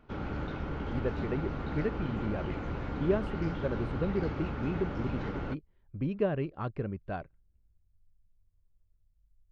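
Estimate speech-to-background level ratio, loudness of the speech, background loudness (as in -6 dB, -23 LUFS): 1.5 dB, -35.5 LUFS, -37.0 LUFS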